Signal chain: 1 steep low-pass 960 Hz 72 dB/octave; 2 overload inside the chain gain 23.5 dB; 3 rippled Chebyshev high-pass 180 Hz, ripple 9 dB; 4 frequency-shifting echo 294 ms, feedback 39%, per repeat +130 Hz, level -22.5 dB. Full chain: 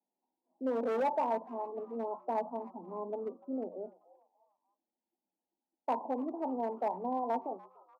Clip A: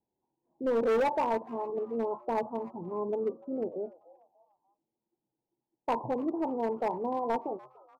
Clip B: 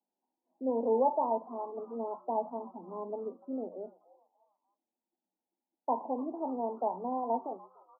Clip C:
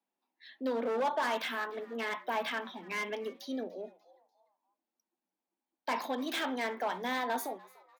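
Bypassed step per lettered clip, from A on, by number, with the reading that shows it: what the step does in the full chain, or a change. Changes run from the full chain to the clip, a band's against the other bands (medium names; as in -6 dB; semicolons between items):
3, 2 kHz band +3.5 dB; 2, distortion -10 dB; 1, 2 kHz band +17.0 dB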